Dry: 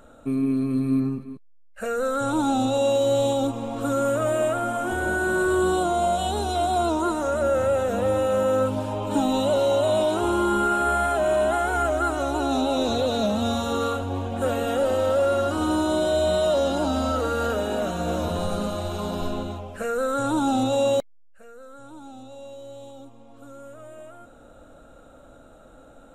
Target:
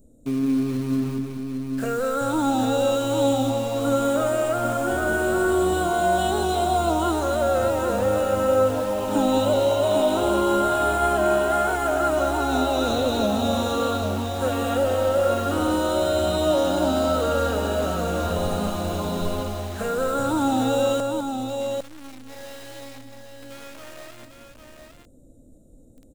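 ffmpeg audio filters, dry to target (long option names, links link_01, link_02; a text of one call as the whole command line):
ffmpeg -i in.wav -filter_complex "[0:a]acrossover=split=430|6300[link_01][link_02][link_03];[link_02]acrusher=bits=6:mix=0:aa=0.000001[link_04];[link_01][link_04][link_03]amix=inputs=3:normalize=0,aecho=1:1:205|804:0.376|0.501" out.wav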